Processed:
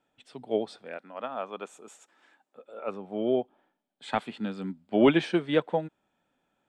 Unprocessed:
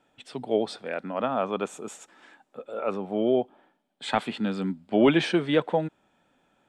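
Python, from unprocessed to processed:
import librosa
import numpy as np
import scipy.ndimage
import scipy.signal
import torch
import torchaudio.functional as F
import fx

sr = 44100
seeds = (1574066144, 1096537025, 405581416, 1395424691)

y = fx.highpass(x, sr, hz=fx.line((0.97, 580.0), (2.86, 220.0)), slope=6, at=(0.97, 2.86), fade=0.02)
y = fx.upward_expand(y, sr, threshold_db=-33.0, expansion=1.5)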